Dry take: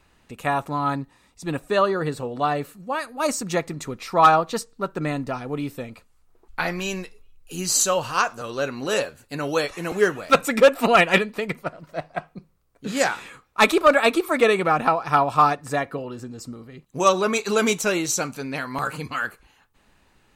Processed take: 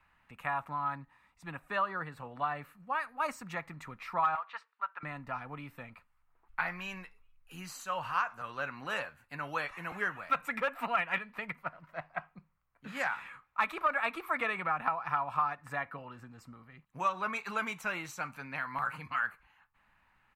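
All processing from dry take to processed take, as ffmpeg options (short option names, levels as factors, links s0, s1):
-filter_complex "[0:a]asettb=1/sr,asplit=3[s0][s1][s2];[s0]atrim=end=4.354[s3];[s1]atrim=start=4.35:end=5.03,asetpts=PTS-STARTPTS,afade=t=in:d=0.004:c=qsin,afade=t=out:st=0.676:d=0.004:c=qsin,asuperpass=centerf=1800:order=4:qfactor=0.68,aeval=exprs='clip(val(0),-1,0.106)':c=same[s4];[s2]atrim=start=5.026[s5];[s3][s4]acrossfade=d=0.004:c1=hsin:c2=qsin[s6];[s6][s5]acrossfade=d=0.004:c1=qsin:c2=hsin,firequalizer=gain_entry='entry(160,0);entry(400,-24);entry(930,-11);entry(2100,-10);entry(3400,-15);entry(12000,0)':delay=0.05:min_phase=1,acompressor=threshold=0.0251:ratio=6,acrossover=split=430 3100:gain=0.1 1 0.0708[s7][s8][s9];[s7][s8][s9]amix=inputs=3:normalize=0,volume=2.24"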